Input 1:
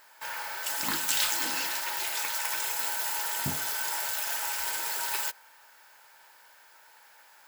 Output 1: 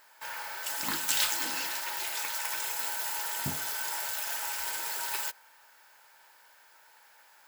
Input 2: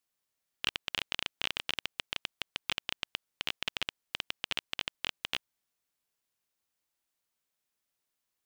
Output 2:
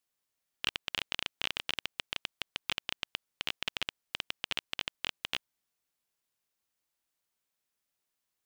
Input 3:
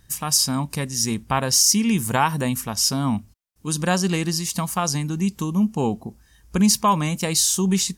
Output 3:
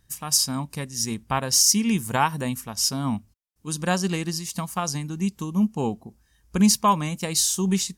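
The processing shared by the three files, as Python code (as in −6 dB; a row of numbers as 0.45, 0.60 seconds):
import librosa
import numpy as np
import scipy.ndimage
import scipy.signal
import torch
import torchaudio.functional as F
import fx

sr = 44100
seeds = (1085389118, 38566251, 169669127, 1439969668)

y = fx.upward_expand(x, sr, threshold_db=-30.0, expansion=1.5)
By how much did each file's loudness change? −2.0, −0.5, −2.5 LU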